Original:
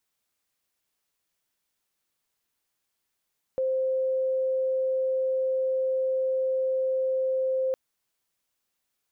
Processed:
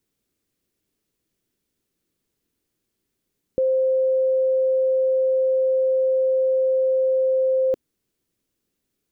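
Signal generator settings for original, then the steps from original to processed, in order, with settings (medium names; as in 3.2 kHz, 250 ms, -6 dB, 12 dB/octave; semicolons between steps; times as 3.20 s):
tone sine 523 Hz -23 dBFS 4.16 s
resonant low shelf 530 Hz +12.5 dB, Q 1.5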